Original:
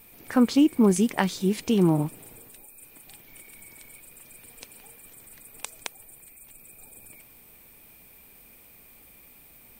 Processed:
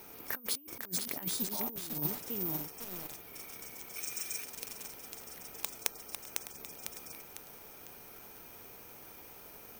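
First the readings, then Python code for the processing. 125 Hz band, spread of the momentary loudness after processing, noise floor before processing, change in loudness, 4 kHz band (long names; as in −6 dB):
−17.0 dB, 15 LU, −53 dBFS, −14.5 dB, −3.5 dB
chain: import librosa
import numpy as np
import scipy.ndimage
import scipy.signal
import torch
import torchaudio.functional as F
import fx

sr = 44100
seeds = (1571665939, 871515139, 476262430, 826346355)

p1 = x + fx.echo_single(x, sr, ms=606, db=-16.0, dry=0)
p2 = fx.spec_box(p1, sr, start_s=3.96, length_s=0.48, low_hz=1100.0, high_hz=9700.0, gain_db=12)
p3 = scipy.signal.sosfilt(scipy.signal.butter(2, 60.0, 'highpass', fs=sr, output='sos'), p2)
p4 = fx.spec_repair(p3, sr, seeds[0], start_s=1.5, length_s=0.49, low_hz=600.0, high_hz=7700.0, source='after')
p5 = fx.low_shelf(p4, sr, hz=110.0, db=-8.5)
p6 = (np.kron(p5[::3], np.eye(3)[0]) * 3)[:len(p5)]
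p7 = fx.peak_eq(p6, sr, hz=430.0, db=2.5, octaves=0.25)
p8 = fx.over_compress(p7, sr, threshold_db=-25.0, ratio=-0.5)
p9 = fx.echo_crushed(p8, sr, ms=501, feedback_pct=55, bits=4, wet_db=-3.5)
y = p9 * librosa.db_to_amplitude(-10.5)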